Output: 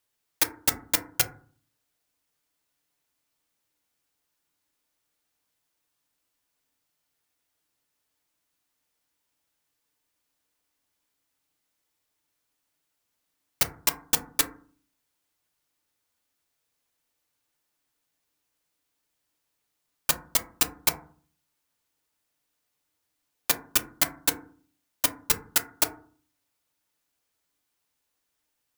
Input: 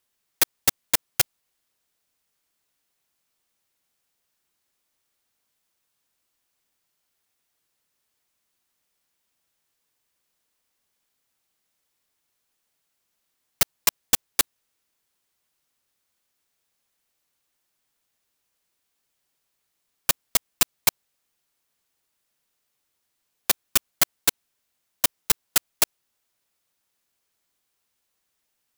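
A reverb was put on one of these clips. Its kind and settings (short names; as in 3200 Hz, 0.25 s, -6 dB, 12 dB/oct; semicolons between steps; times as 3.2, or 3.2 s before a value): FDN reverb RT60 0.45 s, low-frequency decay 1.45×, high-frequency decay 0.3×, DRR 5 dB; gain -3 dB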